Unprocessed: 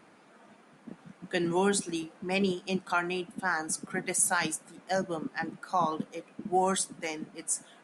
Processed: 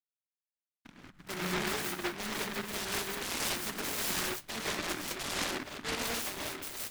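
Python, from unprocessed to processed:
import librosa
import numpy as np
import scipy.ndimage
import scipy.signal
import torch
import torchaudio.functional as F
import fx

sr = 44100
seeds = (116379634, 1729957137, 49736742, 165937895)

p1 = fx.speed_glide(x, sr, from_pct=101, to_pct=126)
p2 = fx.over_compress(p1, sr, threshold_db=-30.0, ratio=-0.5)
p3 = p1 + F.gain(torch.from_numpy(p2), 2.5).numpy()
p4 = fx.comb_fb(p3, sr, f0_hz=150.0, decay_s=0.47, harmonics='all', damping=0.0, mix_pct=70)
p5 = fx.backlash(p4, sr, play_db=-37.5)
p6 = fx.rev_gated(p5, sr, seeds[0], gate_ms=220, shape='rising', drr_db=-5.5)
p7 = fx.noise_mod_delay(p6, sr, seeds[1], noise_hz=1400.0, depth_ms=0.41)
y = F.gain(torch.from_numpy(p7), -7.0).numpy()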